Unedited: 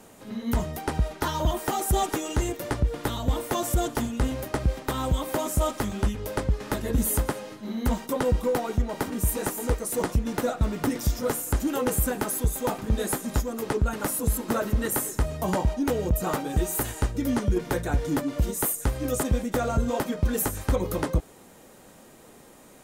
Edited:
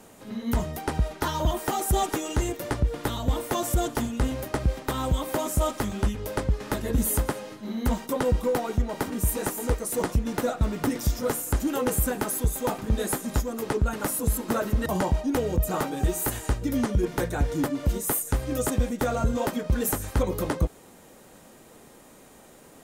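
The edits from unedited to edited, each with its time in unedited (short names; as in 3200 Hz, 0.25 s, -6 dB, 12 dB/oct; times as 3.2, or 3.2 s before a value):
14.86–15.39 cut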